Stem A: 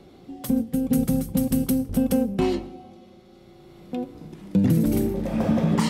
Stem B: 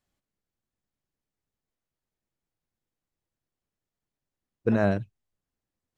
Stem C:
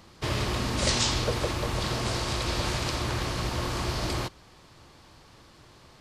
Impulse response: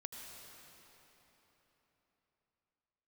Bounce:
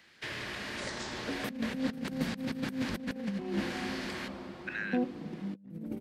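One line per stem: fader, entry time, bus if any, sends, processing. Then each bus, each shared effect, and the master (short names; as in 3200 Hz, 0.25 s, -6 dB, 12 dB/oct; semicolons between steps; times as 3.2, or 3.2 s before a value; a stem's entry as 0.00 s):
-8.5 dB, 1.00 s, no bus, send -9 dB, bell 200 Hz +10 dB 0.24 oct
+2.5 dB, 0.00 s, bus A, no send, dry
-2.5 dB, 0.00 s, bus A, send -11 dB, dry
bus A: 0.0 dB, steep high-pass 1600 Hz 48 dB/oct; compressor, threshold -39 dBFS, peak gain reduction 13 dB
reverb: on, RT60 4.0 s, pre-delay 74 ms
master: three-band isolator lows -13 dB, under 150 Hz, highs -14 dB, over 3100 Hz; negative-ratio compressor -33 dBFS, ratio -0.5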